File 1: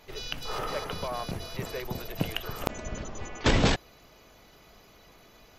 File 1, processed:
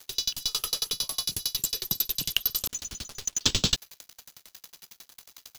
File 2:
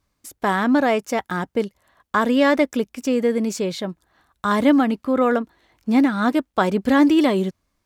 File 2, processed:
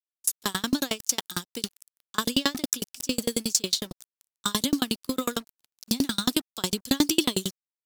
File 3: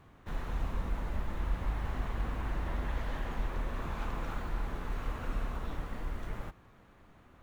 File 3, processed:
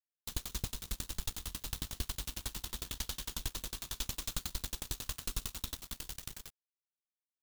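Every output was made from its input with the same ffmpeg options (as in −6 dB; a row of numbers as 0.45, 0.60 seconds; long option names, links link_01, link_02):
-filter_complex "[0:a]acrossover=split=2800[link_01][link_02];[link_02]acompressor=threshold=-41dB:ratio=4:attack=1:release=60[link_03];[link_01][link_03]amix=inputs=2:normalize=0,equalizer=frequency=660:width=1.6:gain=-10,acrossover=split=260|1800[link_04][link_05][link_06];[link_06]aexciter=amount=9.7:drive=9.2:freq=3100[link_07];[link_04][link_05][link_07]amix=inputs=3:normalize=0,acrusher=bits=4:mix=0:aa=0.5,aeval=exprs='val(0)*pow(10,-35*if(lt(mod(11*n/s,1),2*abs(11)/1000),1-mod(11*n/s,1)/(2*abs(11)/1000),(mod(11*n/s,1)-2*abs(11)/1000)/(1-2*abs(11)/1000))/20)':channel_layout=same"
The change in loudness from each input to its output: +4.0, −7.5, −2.0 LU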